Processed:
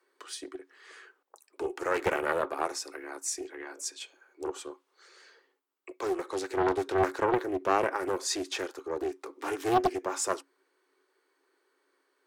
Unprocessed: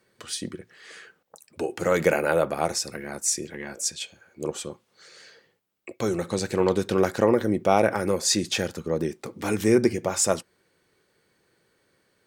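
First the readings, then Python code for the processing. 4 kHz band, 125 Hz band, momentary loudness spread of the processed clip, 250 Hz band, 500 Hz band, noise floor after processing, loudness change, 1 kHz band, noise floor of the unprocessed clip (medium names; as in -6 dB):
-8.5 dB, -14.0 dB, 16 LU, -9.0 dB, -6.5 dB, -75 dBFS, -6.5 dB, -1.0 dB, -69 dBFS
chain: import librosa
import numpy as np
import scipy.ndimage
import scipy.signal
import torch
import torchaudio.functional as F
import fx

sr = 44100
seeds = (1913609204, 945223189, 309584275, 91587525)

y = scipy.signal.sosfilt(scipy.signal.cheby1(6, 9, 270.0, 'highpass', fs=sr, output='sos'), x)
y = fx.doppler_dist(y, sr, depth_ms=0.73)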